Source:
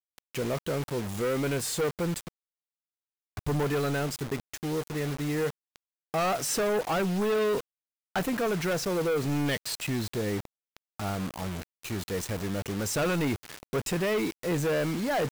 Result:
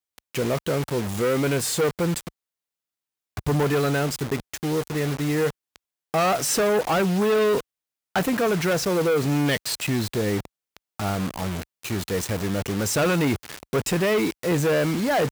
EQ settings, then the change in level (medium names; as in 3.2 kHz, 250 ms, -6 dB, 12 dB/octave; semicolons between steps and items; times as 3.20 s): high-pass 41 Hz; +6.0 dB